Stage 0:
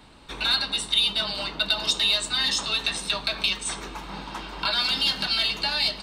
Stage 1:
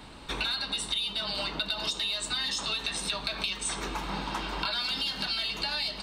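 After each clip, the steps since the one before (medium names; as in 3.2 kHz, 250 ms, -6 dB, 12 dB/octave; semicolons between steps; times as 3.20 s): in parallel at -1.5 dB: peak limiter -19.5 dBFS, peak gain reduction 10.5 dB; on the sum: compression, threshold -27 dBFS, peak gain reduction 12 dB; trim -1.5 dB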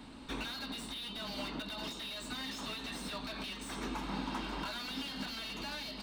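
small resonant body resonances 250 Hz, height 12 dB, ringing for 50 ms; slew-rate limiter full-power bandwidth 64 Hz; trim -6.5 dB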